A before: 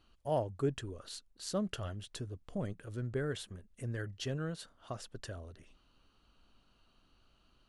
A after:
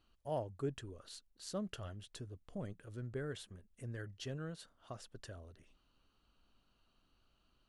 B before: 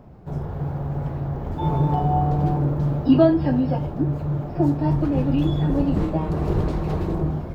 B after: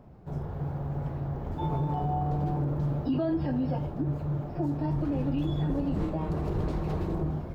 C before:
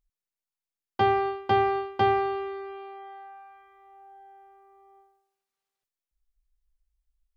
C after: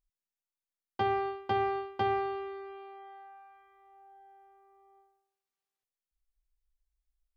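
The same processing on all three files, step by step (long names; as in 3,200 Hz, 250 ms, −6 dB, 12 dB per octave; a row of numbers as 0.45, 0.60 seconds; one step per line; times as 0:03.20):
brickwall limiter −15 dBFS
level −6 dB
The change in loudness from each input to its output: −6.0, −8.5, −7.0 LU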